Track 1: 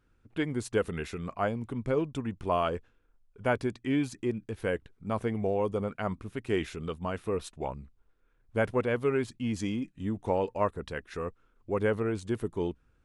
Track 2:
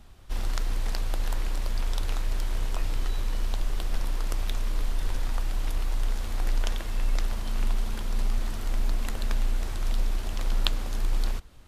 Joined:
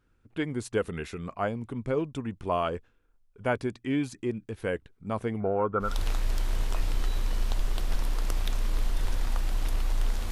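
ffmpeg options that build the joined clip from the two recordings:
-filter_complex "[0:a]asettb=1/sr,asplit=3[s0][s1][s2];[s0]atrim=end=5.404[s3];[s1]atrim=start=5.4:end=5.99,asetpts=PTS-STARTPTS,afade=t=in:d=0.004:c=qsin,afade=t=out:st=0.586:d=0.004:c=qsin,lowpass=f=1400:t=q:w=15[s4];[s2]atrim=start=5.986[s5];[s3][s4]acrossfade=d=0.004:c1=hsin:c2=qsin[s6];[s6][s5]acrossfade=d=0.004:c1=qsin:c2=hsin,apad=whole_dur=10.31,atrim=end=10.31,atrim=end=5.99,asetpts=PTS-STARTPTS[s7];[1:a]atrim=start=1.81:end=6.33,asetpts=PTS-STARTPTS[s8];[s7][s8]acrossfade=d=0.2:c1=tri:c2=tri"

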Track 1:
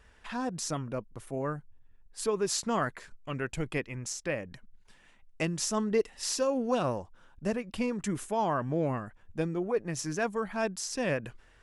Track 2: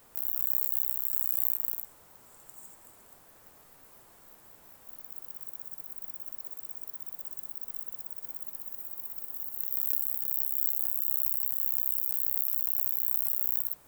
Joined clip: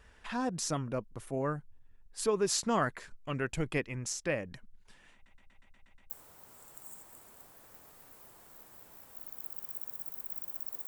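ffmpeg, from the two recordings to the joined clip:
-filter_complex "[0:a]apad=whole_dur=10.87,atrim=end=10.87,asplit=8[s0][s1][s2][s3][s4][s5][s6][s7];[s0]atrim=end=5.262[s8];[s1]atrim=start=5.138:end=5.262[s9];[s2]atrim=start=5.138:end=5.262[s10];[s3]atrim=start=5.138:end=5.262[s11];[s4]atrim=start=5.138:end=5.262[s12];[s5]atrim=start=5.138:end=5.262[s13];[s6]atrim=start=5.138:end=5.262[s14];[s7]atrim=start=5.138:end=5.262[s15];[1:a]atrim=start=1.818:end=6.59[s16];[s8][s9]acrossfade=d=0.004:c1=hsin:c2=hsin[s17];[s17][s10]acrossfade=d=0.004:c1=hsin:c2=hsin[s18];[s18][s11]acrossfade=d=0.004:c1=hsin:c2=hsin[s19];[s19][s12]acrossfade=d=0.004:c1=hsin:c2=hsin[s20];[s20][s13]acrossfade=d=0.004:c1=hsin:c2=hsin[s21];[s21][s14]acrossfade=d=0.004:c1=hsin:c2=hsin[s22];[s22][s15]acrossfade=d=0.004:c1=hsin:c2=hsin[s23];[s23][s16]acrossfade=d=0.004:c1=hsin:c2=hsin"

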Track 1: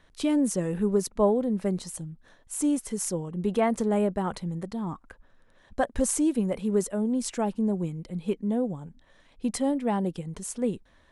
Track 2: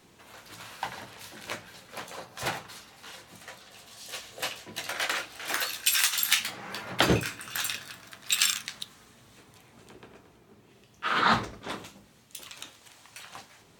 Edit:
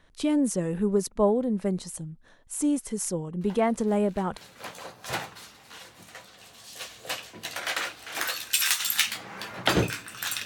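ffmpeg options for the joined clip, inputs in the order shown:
-filter_complex "[1:a]asplit=2[s0][s1];[0:a]apad=whole_dur=10.45,atrim=end=10.45,atrim=end=4.372[s2];[s1]atrim=start=1.698:end=7.78[s3];[s0]atrim=start=0.74:end=1.7,asetpts=PTS-STARTPTS,volume=0.2,afade=t=in:d=0.004:c=hsin,afade=t=out:st=0.956:d=0.004:c=hsin,adelay=150381S[s4];[s2][s3]acrossfade=d=0.004:c1=hsin:c2=hsin[s5];[s5][s4]amix=inputs=2:normalize=0"

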